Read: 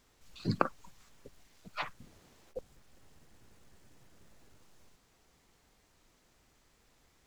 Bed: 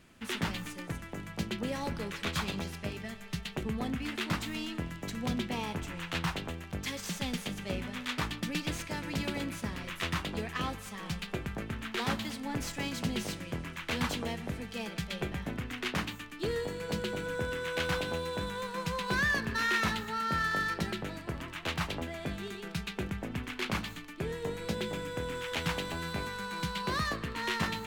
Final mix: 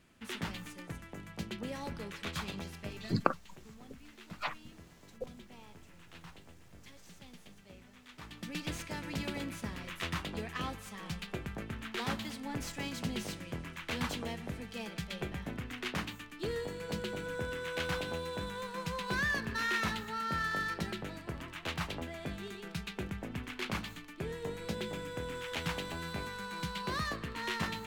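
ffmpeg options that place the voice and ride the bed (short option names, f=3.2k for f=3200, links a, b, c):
-filter_complex "[0:a]adelay=2650,volume=0.5dB[a];[1:a]volume=10.5dB,afade=t=out:st=3.1:d=0.22:silence=0.199526,afade=t=in:st=8.17:d=0.53:silence=0.158489[b];[a][b]amix=inputs=2:normalize=0"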